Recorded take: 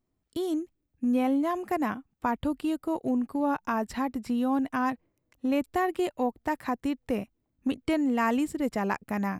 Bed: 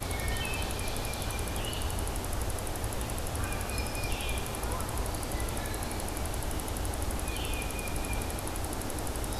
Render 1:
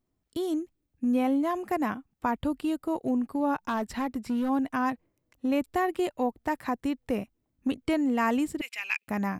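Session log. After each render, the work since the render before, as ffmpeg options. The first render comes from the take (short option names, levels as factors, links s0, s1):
-filter_complex "[0:a]asplit=3[s0][s1][s2];[s0]afade=t=out:st=3.65:d=0.02[s3];[s1]volume=15.8,asoftclip=hard,volume=0.0631,afade=t=in:st=3.65:d=0.02,afade=t=out:st=4.48:d=0.02[s4];[s2]afade=t=in:st=4.48:d=0.02[s5];[s3][s4][s5]amix=inputs=3:normalize=0,asettb=1/sr,asplit=3[s6][s7][s8];[s6]atrim=end=8.614[s9];[s7]atrim=start=8.61:end=9.08,asetpts=PTS-STARTPTS,afade=t=in:d=0.004:c=qsin,afade=t=out:st=0.466:d=0.004:c=qsin,highpass=f=2500:t=q:w=8.3[s10];[s8]atrim=start=9.076[s11];[s9][s10]acrossfade=d=0.004:c1=hsin:c2=qsin[s12];[s12][s11]acrossfade=d=0.004:c1=qsin:c2=hsin"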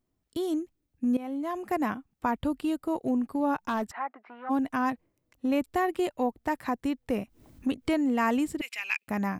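-filter_complex "[0:a]asplit=3[s0][s1][s2];[s0]afade=t=out:st=3.9:d=0.02[s3];[s1]highpass=f=480:w=0.5412,highpass=f=480:w=1.3066,equalizer=f=490:t=q:w=4:g=-9,equalizer=f=720:t=q:w=4:g=5,equalizer=f=1300:t=q:w=4:g=4,lowpass=f=2100:w=0.5412,lowpass=f=2100:w=1.3066,afade=t=in:st=3.9:d=0.02,afade=t=out:st=4.49:d=0.02[s4];[s2]afade=t=in:st=4.49:d=0.02[s5];[s3][s4][s5]amix=inputs=3:normalize=0,asettb=1/sr,asplit=3[s6][s7][s8];[s6]atrim=end=7.174[s9];[s7]atrim=start=7.17:end=9.03,asetpts=PTS-STARTPTS,afade=t=in:d=0.004:c=qsin,afade=t=out:st=1.856:d=0.004:c=qsin,acompressor=mode=upward:threshold=0.02:ratio=2.5:attack=3.2:release=140:knee=2.83:detection=peak[s10];[s8]atrim=start=9.026[s11];[s9][s10]acrossfade=d=0.004:c1=hsin:c2=qsin[s12];[s12][s11]acrossfade=d=0.004:c1=qsin:c2=hsin,asplit=2[s13][s14];[s13]atrim=end=1.17,asetpts=PTS-STARTPTS,afade=t=out:st=1.166:d=0.004:c=hsin:silence=0.158489[s15];[s14]atrim=start=1.17,asetpts=PTS-STARTPTS,afade=t=in:d=0.58:silence=0.158489[s16];[s15][s16]concat=n=2:v=0:a=1"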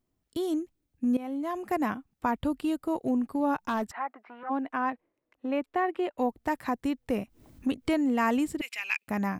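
-filter_complex "[0:a]asettb=1/sr,asplit=3[s0][s1][s2];[s0]atrim=end=4.434[s3];[s1]atrim=start=4.43:end=6.18,asetpts=PTS-STARTPTS,afade=t=in:d=0.004:c=qsin,afade=t=out:st=1.746:d=0.004:c=qsin,acrossover=split=270 3200:gain=0.158 1 0.126[s4][s5][s6];[s4][s5][s6]amix=inputs=3:normalize=0[s7];[s2]atrim=start=6.176[s8];[s3][s7]acrossfade=d=0.004:c1=hsin:c2=qsin[s9];[s9][s8]acrossfade=d=0.004:c1=qsin:c2=hsin"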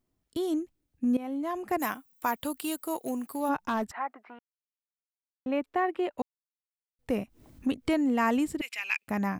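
-filter_complex "[0:a]asplit=3[s0][s1][s2];[s0]afade=t=out:st=1.78:d=0.02[s3];[s1]aemphasis=mode=production:type=riaa,afade=t=in:st=1.78:d=0.02,afade=t=out:st=3.48:d=0.02[s4];[s2]afade=t=in:st=3.48:d=0.02[s5];[s3][s4][s5]amix=inputs=3:normalize=0,asplit=5[s6][s7][s8][s9][s10];[s6]atrim=end=4.39,asetpts=PTS-STARTPTS,afade=t=out:st=4.386:d=0.004:c=hsin[s11];[s7]atrim=start=4.39:end=5.46,asetpts=PTS-STARTPTS,volume=0[s12];[s8]atrim=start=5.46:end=6.22,asetpts=PTS-STARTPTS,afade=t=in:d=0.004:c=hsin,afade=t=out:st=0.756:d=0.004:c=hsin[s13];[s9]atrim=start=6.22:end=6.99,asetpts=PTS-STARTPTS,volume=0[s14];[s10]atrim=start=6.99,asetpts=PTS-STARTPTS,afade=t=in:d=0.004:c=hsin[s15];[s11][s12][s13][s14][s15]concat=n=5:v=0:a=1"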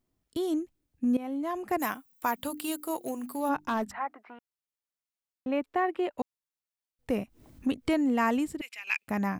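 -filter_complex "[0:a]asplit=3[s0][s1][s2];[s0]afade=t=out:st=2.37:d=0.02[s3];[s1]bandreject=f=50:t=h:w=6,bandreject=f=100:t=h:w=6,bandreject=f=150:t=h:w=6,bandreject=f=200:t=h:w=6,bandreject=f=250:t=h:w=6,bandreject=f=300:t=h:w=6,bandreject=f=350:t=h:w=6,afade=t=in:st=2.37:d=0.02,afade=t=out:st=4.18:d=0.02[s4];[s2]afade=t=in:st=4.18:d=0.02[s5];[s3][s4][s5]amix=inputs=3:normalize=0,asplit=2[s6][s7];[s6]atrim=end=8.87,asetpts=PTS-STARTPTS,afade=t=out:st=8.22:d=0.65:silence=0.375837[s8];[s7]atrim=start=8.87,asetpts=PTS-STARTPTS,afade=t=in:d=0.004:c=hsin:silence=0.375837[s9];[s8][s9]concat=n=2:v=0:a=1"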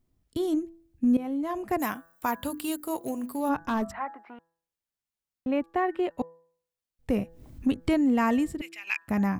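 -af "lowshelf=f=180:g=11,bandreject=f=166:t=h:w=4,bandreject=f=332:t=h:w=4,bandreject=f=498:t=h:w=4,bandreject=f=664:t=h:w=4,bandreject=f=830:t=h:w=4,bandreject=f=996:t=h:w=4,bandreject=f=1162:t=h:w=4,bandreject=f=1328:t=h:w=4,bandreject=f=1494:t=h:w=4,bandreject=f=1660:t=h:w=4,bandreject=f=1826:t=h:w=4"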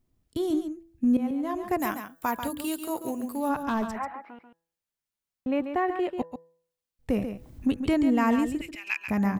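-af "aecho=1:1:139:0.376"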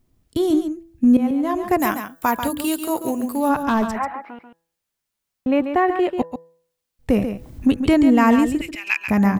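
-af "volume=2.66"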